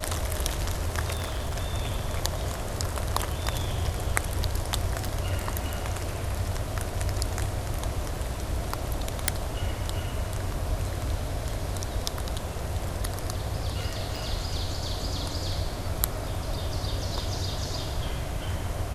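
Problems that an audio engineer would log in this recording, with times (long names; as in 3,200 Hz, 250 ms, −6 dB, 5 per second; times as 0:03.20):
0:01.13–0:01.57: clipping −25.5 dBFS
0:05.07: drop-out 3.4 ms
0:09.28: click
0:14.16: drop-out 3.8 ms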